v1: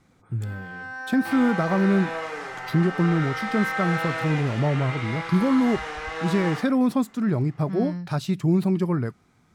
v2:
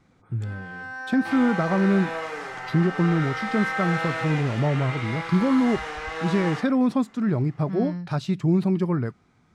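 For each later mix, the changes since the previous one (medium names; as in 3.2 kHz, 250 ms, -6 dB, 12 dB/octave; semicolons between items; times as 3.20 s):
speech: add distance through air 58 m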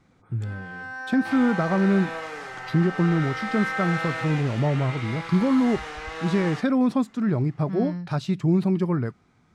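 second sound: send -7.0 dB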